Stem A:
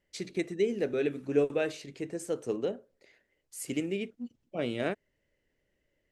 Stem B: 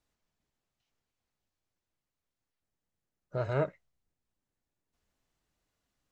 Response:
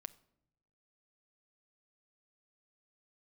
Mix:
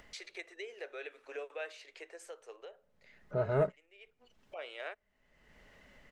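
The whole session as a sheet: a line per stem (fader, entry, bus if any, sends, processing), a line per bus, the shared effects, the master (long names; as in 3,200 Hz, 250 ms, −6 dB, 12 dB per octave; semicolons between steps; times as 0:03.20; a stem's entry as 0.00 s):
−10.0 dB, 0.00 s, send −20 dB, inverse Chebyshev high-pass filter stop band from 180 Hz, stop band 50 dB; tilt shelving filter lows −10 dB, about 640 Hz; automatic ducking −23 dB, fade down 1.45 s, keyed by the second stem
−2.5 dB, 0.00 s, no send, comb filter 4.7 ms, depth 40%; leveller curve on the samples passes 1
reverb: on, pre-delay 6 ms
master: low-pass filter 3,700 Hz 6 dB per octave; high-shelf EQ 2,700 Hz −9 dB; upward compression, threshold −39 dBFS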